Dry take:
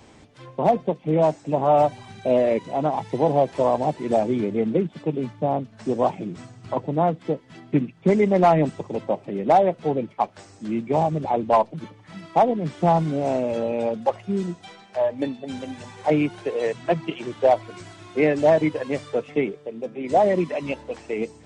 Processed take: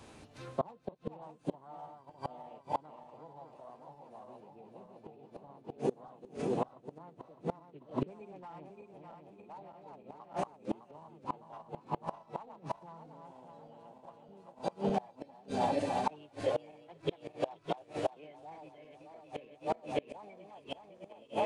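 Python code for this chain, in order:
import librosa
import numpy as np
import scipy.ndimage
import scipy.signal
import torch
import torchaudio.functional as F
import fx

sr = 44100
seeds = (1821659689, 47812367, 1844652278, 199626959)

y = fx.reverse_delay_fb(x, sr, ms=304, feedback_pct=73, wet_db=-3.5)
y = fx.formant_shift(y, sr, semitones=3)
y = fx.gate_flip(y, sr, shuts_db=-15.0, range_db=-29)
y = y * librosa.db_to_amplitude(-4.5)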